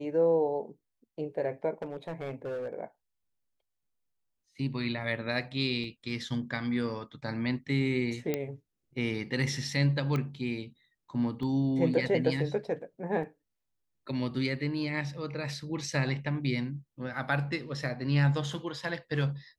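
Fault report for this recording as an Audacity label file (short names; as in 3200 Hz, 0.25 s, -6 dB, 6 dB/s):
1.820000	2.730000	clipped -32 dBFS
5.840000	5.840000	gap 2.6 ms
8.340000	8.340000	pop -16 dBFS
10.160000	10.160000	pop -20 dBFS
11.430000	11.430000	gap 2.7 ms
13.230000	13.230000	gap 3.8 ms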